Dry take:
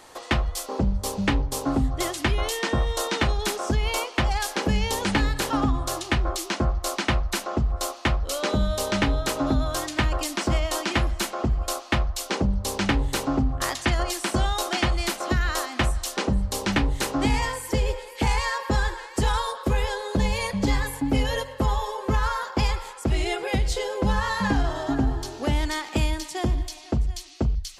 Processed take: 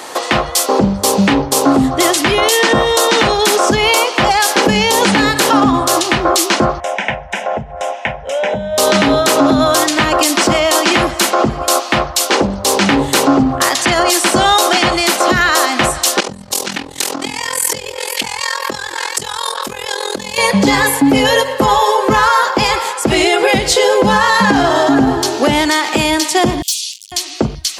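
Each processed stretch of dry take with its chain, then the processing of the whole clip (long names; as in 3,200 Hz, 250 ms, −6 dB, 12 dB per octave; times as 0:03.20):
0:06.80–0:08.78: downward compressor 2.5 to 1, threshold −30 dBFS + high-frequency loss of the air 130 metres + phaser with its sweep stopped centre 1,200 Hz, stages 6
0:12.25–0:12.77: parametric band 160 Hz −9 dB 1 octave + highs frequency-modulated by the lows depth 0.33 ms
0:16.20–0:20.38: downward compressor 20 to 1, threshold −34 dBFS + amplitude modulation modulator 42 Hz, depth 80% + high-shelf EQ 2,300 Hz +11.5 dB
0:26.62–0:27.12: parametric band 10,000 Hz +10 dB 2.4 octaves + gain into a clipping stage and back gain 32 dB + Butterworth high-pass 2,800 Hz 48 dB per octave
whole clip: high-pass filter 220 Hz 12 dB per octave; boost into a limiter +20.5 dB; level −1 dB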